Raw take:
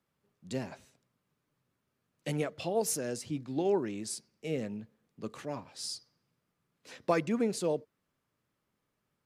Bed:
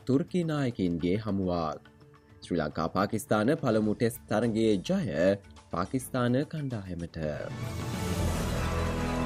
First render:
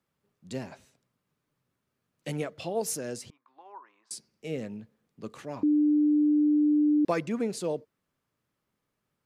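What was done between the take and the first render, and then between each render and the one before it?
0:03.30–0:04.11: four-pole ladder band-pass 1,100 Hz, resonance 80%
0:05.63–0:07.05: beep over 298 Hz −19.5 dBFS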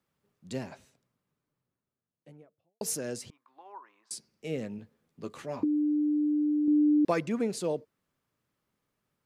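0:00.61–0:02.81: fade out and dull
0:04.77–0:06.68: double-tracking delay 12 ms −6.5 dB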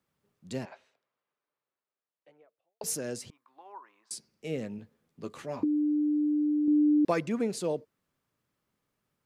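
0:00.65–0:02.84: three-way crossover with the lows and the highs turned down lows −23 dB, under 420 Hz, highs −20 dB, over 4,300 Hz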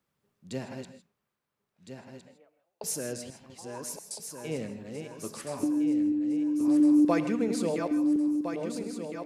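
feedback delay that plays each chunk backwards 680 ms, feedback 68%, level −5.5 dB
reverb whose tail is shaped and stops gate 180 ms rising, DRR 9.5 dB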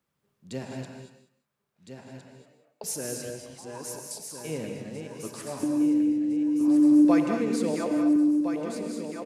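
single-tap delay 193 ms −16 dB
reverb whose tail is shaped and stops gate 260 ms rising, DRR 4 dB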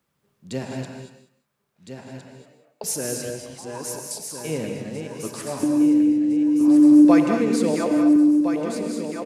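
level +6 dB

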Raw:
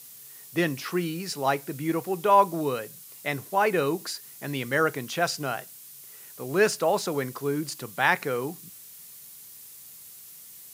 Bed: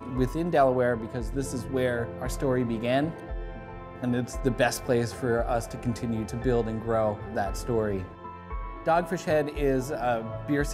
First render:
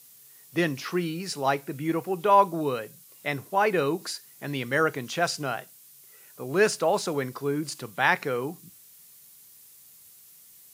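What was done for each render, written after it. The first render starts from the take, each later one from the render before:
noise reduction from a noise print 6 dB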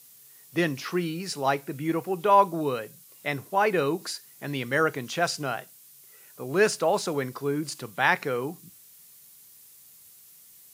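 no processing that can be heard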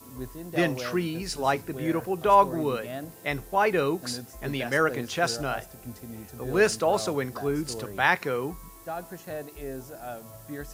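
mix in bed −11.5 dB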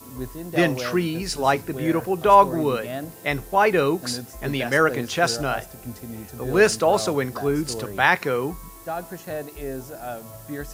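level +5 dB
brickwall limiter −3 dBFS, peak gain reduction 1.5 dB

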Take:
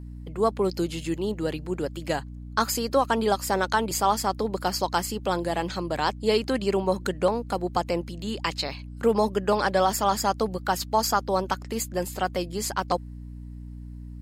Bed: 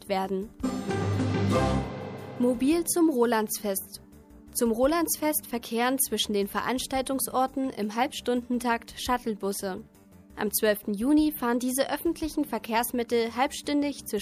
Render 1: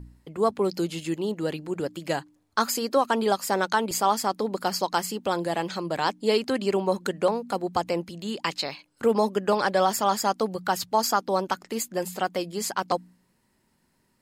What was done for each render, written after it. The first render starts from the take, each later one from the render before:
hum removal 60 Hz, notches 5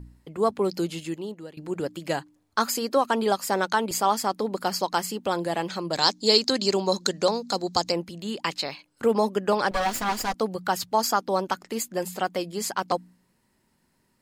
0:00.89–0:01.57: fade out, to −21.5 dB
0:05.93–0:07.92: flat-topped bell 5,200 Hz +14.5 dB 1.2 octaves
0:09.71–0:10.34: lower of the sound and its delayed copy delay 4.1 ms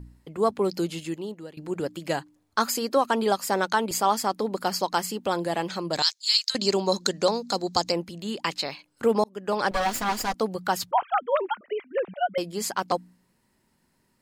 0:06.02–0:06.55: Bessel high-pass filter 2,300 Hz, order 4
0:09.24–0:09.67: fade in
0:10.91–0:12.38: three sine waves on the formant tracks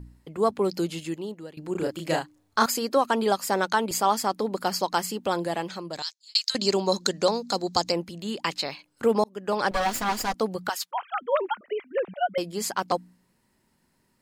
0:01.72–0:02.66: double-tracking delay 31 ms −2 dB
0:05.39–0:06.35: fade out
0:10.69–0:11.21: Bessel high-pass filter 1,400 Hz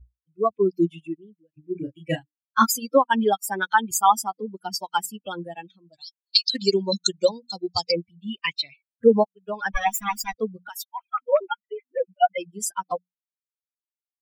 spectral dynamics exaggerated over time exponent 3
automatic gain control gain up to 10 dB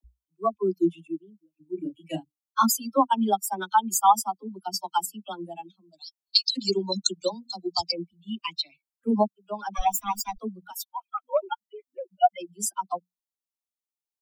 phaser with its sweep stopped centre 480 Hz, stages 6
all-pass dispersion lows, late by 40 ms, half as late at 360 Hz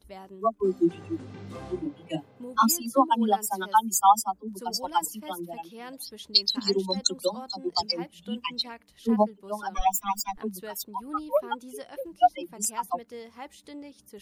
mix in bed −16 dB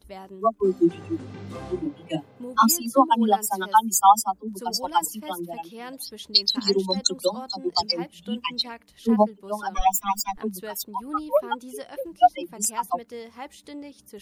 level +3.5 dB
brickwall limiter −3 dBFS, peak gain reduction 2 dB

